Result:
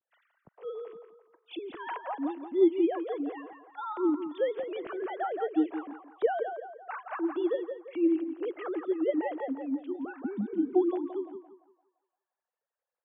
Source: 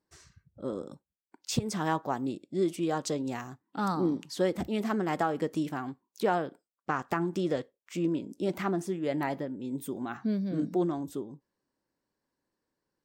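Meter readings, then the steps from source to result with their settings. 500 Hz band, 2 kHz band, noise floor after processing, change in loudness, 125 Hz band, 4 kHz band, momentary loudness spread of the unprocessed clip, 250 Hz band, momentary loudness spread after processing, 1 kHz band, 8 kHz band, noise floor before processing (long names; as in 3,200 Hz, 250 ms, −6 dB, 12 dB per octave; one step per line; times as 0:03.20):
+2.0 dB, −4.5 dB, below −85 dBFS, +0.5 dB, below −15 dB, −9.5 dB, 11 LU, +1.0 dB, 14 LU, −3.0 dB, below −35 dB, below −85 dBFS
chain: three sine waves on the formant tracks
feedback echo with a band-pass in the loop 171 ms, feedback 47%, band-pass 910 Hz, level −5 dB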